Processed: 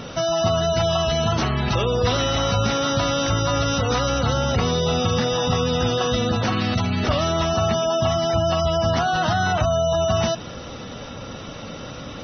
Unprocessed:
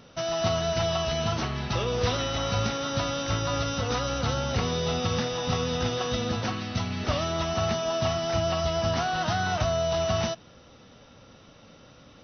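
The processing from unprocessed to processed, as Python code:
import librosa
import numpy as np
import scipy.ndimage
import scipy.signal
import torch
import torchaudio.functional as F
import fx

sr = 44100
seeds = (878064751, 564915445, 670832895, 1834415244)

p1 = fx.spec_gate(x, sr, threshold_db=-25, keep='strong')
p2 = fx.over_compress(p1, sr, threshold_db=-38.0, ratio=-1.0)
p3 = p1 + (p2 * librosa.db_to_amplitude(1.0))
y = p3 * librosa.db_to_amplitude(4.5)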